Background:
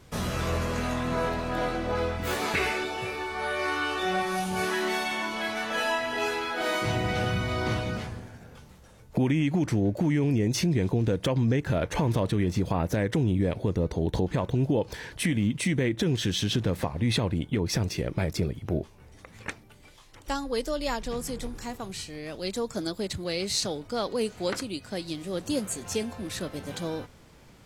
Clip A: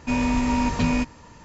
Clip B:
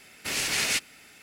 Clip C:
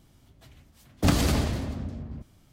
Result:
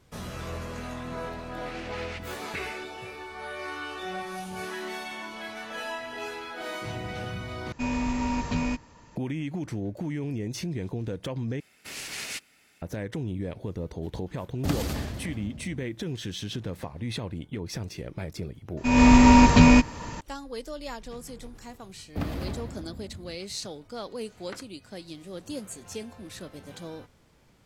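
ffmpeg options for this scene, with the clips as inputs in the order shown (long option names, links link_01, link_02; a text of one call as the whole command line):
ffmpeg -i bed.wav -i cue0.wav -i cue1.wav -i cue2.wav -filter_complex "[2:a]asplit=2[link_01][link_02];[1:a]asplit=2[link_03][link_04];[3:a]asplit=2[link_05][link_06];[0:a]volume=-7.5dB[link_07];[link_01]lowpass=2700[link_08];[link_05]equalizer=frequency=13000:width=7.8:gain=9[link_09];[link_04]dynaudnorm=framelen=130:gausssize=3:maxgain=13dB[link_10];[link_06]equalizer=frequency=7400:width=0.66:gain=-14.5[link_11];[link_07]asplit=3[link_12][link_13][link_14];[link_12]atrim=end=7.724[link_15];[link_03]atrim=end=1.44,asetpts=PTS-STARTPTS,volume=-6dB[link_16];[link_13]atrim=start=9.156:end=11.604[link_17];[link_02]atrim=end=1.22,asetpts=PTS-STARTPTS,volume=-9.5dB[link_18];[link_14]atrim=start=12.816[link_19];[link_08]atrim=end=1.22,asetpts=PTS-STARTPTS,volume=-10.5dB,afade=type=in:duration=0.004:curve=hsin,afade=type=out:start_time=1.216:duration=0.004:curve=hsin,adelay=1400[link_20];[link_09]atrim=end=2.52,asetpts=PTS-STARTPTS,volume=-7dB,afade=type=in:duration=0.004:curve=hsin,afade=type=out:start_time=2.516:duration=0.004:curve=hsin,adelay=13610[link_21];[link_10]atrim=end=1.44,asetpts=PTS-STARTPTS,volume=-2dB,afade=type=in:duration=0.004:curve=hsin,afade=type=out:start_time=1.436:duration=0.004:curve=hsin,adelay=18770[link_22];[link_11]atrim=end=2.52,asetpts=PTS-STARTPTS,volume=-9dB,afade=type=in:duration=0.004:curve=hsin,afade=type=out:start_time=2.516:duration=0.004:curve=hsin,adelay=21130[link_23];[link_15][link_16]acrossfade=duration=0.004:curve1=hsin:curve2=hsin[link_24];[link_24][link_17]acrossfade=duration=0.004:curve1=hsin:curve2=hsin[link_25];[link_25][link_18]acrossfade=duration=0.004:curve1=hsin:curve2=hsin[link_26];[link_26][link_19]acrossfade=duration=0.004:curve1=hsin:curve2=hsin[link_27];[link_27][link_20][link_21][link_22][link_23]amix=inputs=5:normalize=0" out.wav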